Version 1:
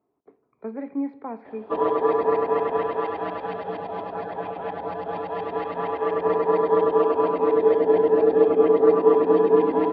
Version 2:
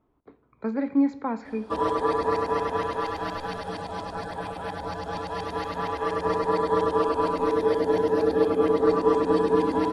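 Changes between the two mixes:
speech +6.5 dB; master: remove speaker cabinet 150–2900 Hz, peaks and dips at 410 Hz +7 dB, 700 Hz +6 dB, 1500 Hz -4 dB

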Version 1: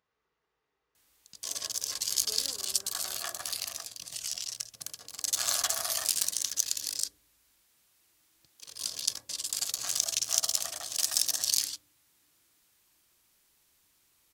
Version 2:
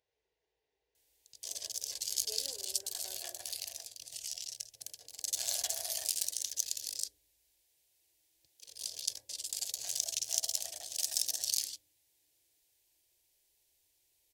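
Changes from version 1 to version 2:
background -5.0 dB; master: add fixed phaser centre 510 Hz, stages 4

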